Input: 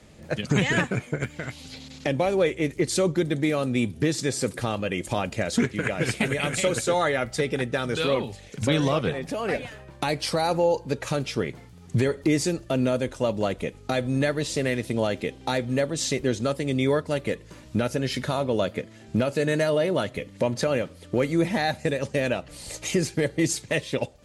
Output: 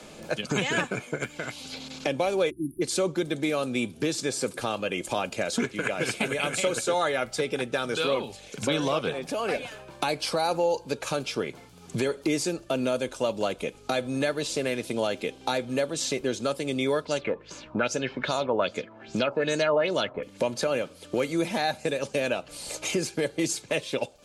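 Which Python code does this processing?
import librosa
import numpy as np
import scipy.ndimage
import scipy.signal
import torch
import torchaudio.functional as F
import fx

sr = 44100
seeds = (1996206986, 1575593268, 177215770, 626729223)

y = fx.spec_erase(x, sr, start_s=2.5, length_s=0.32, low_hz=380.0, high_hz=9200.0)
y = fx.filter_lfo_lowpass(y, sr, shape='sine', hz=2.5, low_hz=890.0, high_hz=7200.0, q=3.6, at=(17.05, 20.23))
y = fx.peak_eq(y, sr, hz=72.0, db=-14.0, octaves=2.9)
y = fx.notch(y, sr, hz=1900.0, q=5.5)
y = fx.band_squash(y, sr, depth_pct=40)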